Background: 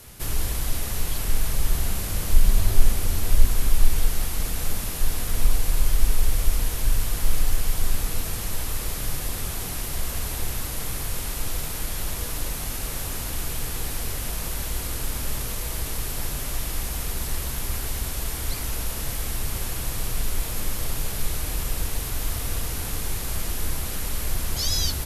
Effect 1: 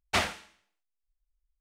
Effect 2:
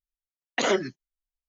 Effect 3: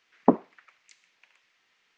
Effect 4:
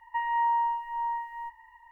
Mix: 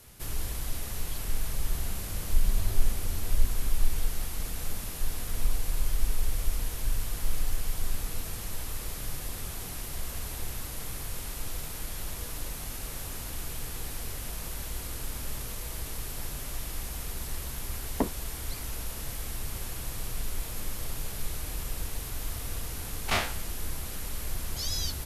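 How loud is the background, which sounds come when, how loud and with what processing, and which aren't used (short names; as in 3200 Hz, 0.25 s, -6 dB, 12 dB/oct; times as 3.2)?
background -7.5 dB
17.72 add 3 -13.5 dB + sample leveller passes 2
22.98 add 1 -5.5 dB + spectral dilation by 60 ms
not used: 2, 4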